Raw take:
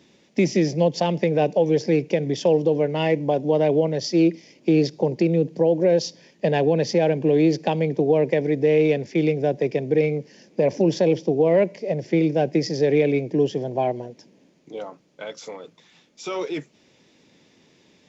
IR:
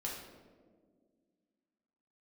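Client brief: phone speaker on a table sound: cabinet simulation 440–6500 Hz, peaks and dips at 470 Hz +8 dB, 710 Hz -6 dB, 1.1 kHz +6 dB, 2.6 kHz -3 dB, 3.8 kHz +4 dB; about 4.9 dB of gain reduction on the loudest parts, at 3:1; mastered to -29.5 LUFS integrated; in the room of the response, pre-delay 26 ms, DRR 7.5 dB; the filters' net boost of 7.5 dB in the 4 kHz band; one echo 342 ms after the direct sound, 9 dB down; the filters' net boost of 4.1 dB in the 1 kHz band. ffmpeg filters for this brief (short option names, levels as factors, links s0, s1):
-filter_complex "[0:a]equalizer=f=1000:t=o:g=7.5,equalizer=f=4000:t=o:g=8.5,acompressor=threshold=0.112:ratio=3,aecho=1:1:342:0.355,asplit=2[s0][s1];[1:a]atrim=start_sample=2205,adelay=26[s2];[s1][s2]afir=irnorm=-1:irlink=0,volume=0.376[s3];[s0][s3]amix=inputs=2:normalize=0,highpass=f=440:w=0.5412,highpass=f=440:w=1.3066,equalizer=f=470:t=q:w=4:g=8,equalizer=f=710:t=q:w=4:g=-6,equalizer=f=1100:t=q:w=4:g=6,equalizer=f=2600:t=q:w=4:g=-3,equalizer=f=3800:t=q:w=4:g=4,lowpass=f=6500:w=0.5412,lowpass=f=6500:w=1.3066,volume=0.376"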